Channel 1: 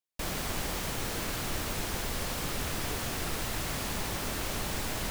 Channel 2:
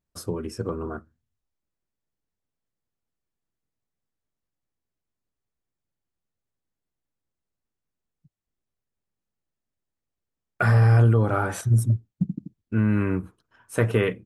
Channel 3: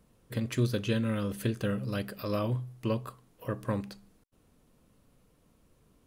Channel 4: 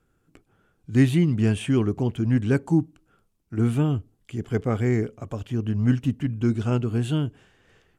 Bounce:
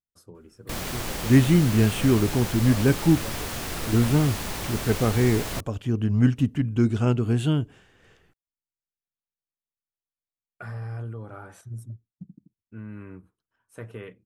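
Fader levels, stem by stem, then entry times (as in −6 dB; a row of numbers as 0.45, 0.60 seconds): +2.0, −17.5, −9.0, +1.5 decibels; 0.50, 0.00, 0.35, 0.35 seconds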